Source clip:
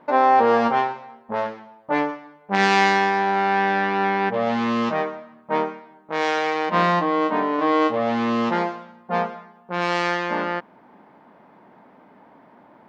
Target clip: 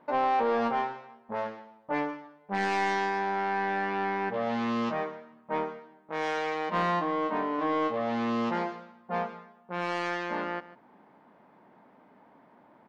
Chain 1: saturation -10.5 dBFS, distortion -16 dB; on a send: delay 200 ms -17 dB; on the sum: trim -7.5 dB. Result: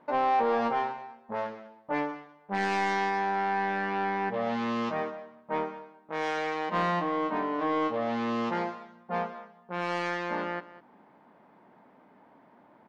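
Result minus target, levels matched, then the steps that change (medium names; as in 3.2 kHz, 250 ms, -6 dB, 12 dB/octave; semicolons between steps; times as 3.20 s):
echo 54 ms late
change: delay 146 ms -17 dB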